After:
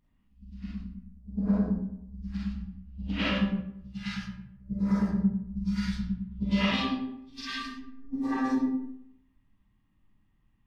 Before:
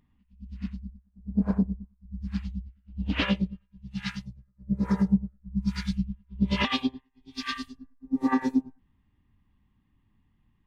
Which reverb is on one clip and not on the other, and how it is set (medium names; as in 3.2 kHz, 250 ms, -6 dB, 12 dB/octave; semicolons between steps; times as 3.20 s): algorithmic reverb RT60 0.76 s, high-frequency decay 0.6×, pre-delay 5 ms, DRR -6.5 dB; trim -8 dB